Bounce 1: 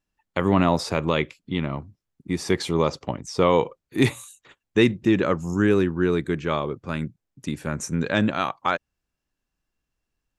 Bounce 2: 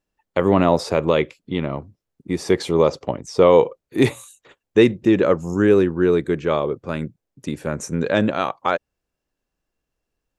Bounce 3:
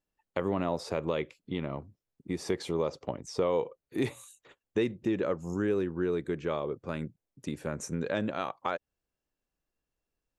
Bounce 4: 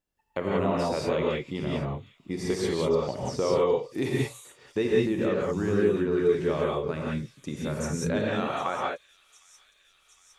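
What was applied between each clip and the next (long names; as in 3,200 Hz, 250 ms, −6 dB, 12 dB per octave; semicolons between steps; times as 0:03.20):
parametric band 500 Hz +8 dB 1.2 octaves
downward compressor 2 to 1, threshold −23 dBFS, peak gain reduction 8.5 dB; level −7.5 dB
delay with a high-pass on its return 760 ms, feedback 76%, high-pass 3,900 Hz, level −14.5 dB; reverb whose tail is shaped and stops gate 210 ms rising, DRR −4 dB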